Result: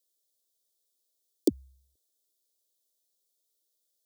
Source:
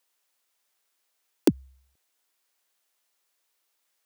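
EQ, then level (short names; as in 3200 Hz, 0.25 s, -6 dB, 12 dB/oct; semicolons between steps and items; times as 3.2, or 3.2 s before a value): elliptic band-stop 710–3400 Hz; bell 2000 Hz -9 dB 1.4 oct; fixed phaser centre 390 Hz, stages 4; -1.5 dB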